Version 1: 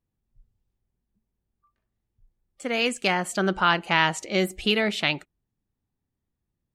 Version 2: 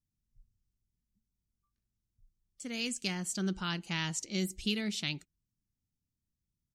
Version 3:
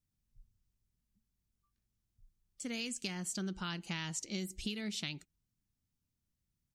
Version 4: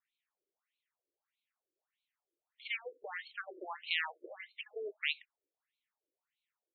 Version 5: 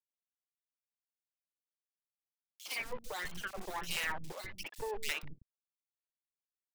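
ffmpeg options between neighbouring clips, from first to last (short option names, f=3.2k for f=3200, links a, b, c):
-af "firequalizer=gain_entry='entry(180,0);entry(580,-17);entry(5600,6);entry(10000,0)':delay=0.05:min_phase=1,volume=-5dB"
-af "acompressor=threshold=-37dB:ratio=6,volume=1.5dB"
-filter_complex "[0:a]acrossover=split=160|3700[a][b][c];[a]acrusher=samples=23:mix=1:aa=0.000001[d];[d][b][c]amix=inputs=3:normalize=0,afftfilt=real='re*between(b*sr/1024,420*pow(3100/420,0.5+0.5*sin(2*PI*1.6*pts/sr))/1.41,420*pow(3100/420,0.5+0.5*sin(2*PI*1.6*pts/sr))*1.41)':imag='im*between(b*sr/1024,420*pow(3100/420,0.5+0.5*sin(2*PI*1.6*pts/sr))/1.41,420*pow(3100/420,0.5+0.5*sin(2*PI*1.6*pts/sr))*1.41)':win_size=1024:overlap=0.75,volume=10.5dB"
-filter_complex "[0:a]acrusher=bits=6:dc=4:mix=0:aa=0.000001,asoftclip=type=hard:threshold=-34dB,acrossover=split=290|2800[a][b][c];[b]adelay=60[d];[a]adelay=200[e];[e][d][c]amix=inputs=3:normalize=0,volume=8.5dB"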